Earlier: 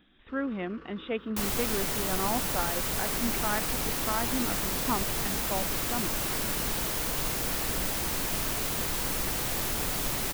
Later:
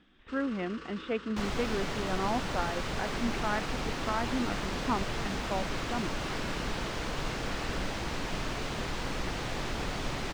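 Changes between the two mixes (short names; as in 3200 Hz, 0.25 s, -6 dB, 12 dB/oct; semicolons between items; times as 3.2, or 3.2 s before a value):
first sound: remove tape spacing loss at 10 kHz 45 dB; master: add air absorption 140 m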